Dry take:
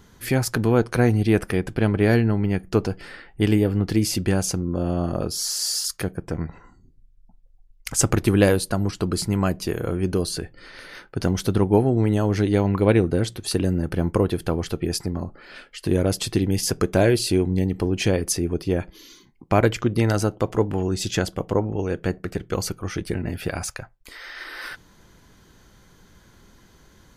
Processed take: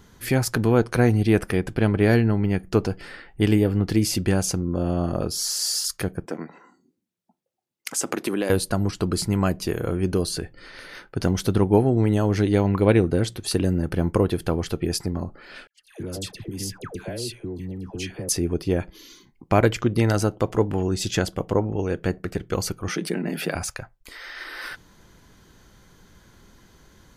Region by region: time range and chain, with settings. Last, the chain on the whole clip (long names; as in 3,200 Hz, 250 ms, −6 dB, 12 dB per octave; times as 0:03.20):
0:06.26–0:08.50: high-pass filter 220 Hz 24 dB per octave + downward compressor, threshold −20 dBFS
0:15.67–0:18.29: noise gate −34 dBFS, range −26 dB + downward compressor 5 to 1, threshold −29 dBFS + all-pass dispersion lows, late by 138 ms, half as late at 1,000 Hz
0:22.88–0:23.55: elliptic high-pass filter 160 Hz + envelope flattener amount 50%
whole clip: no processing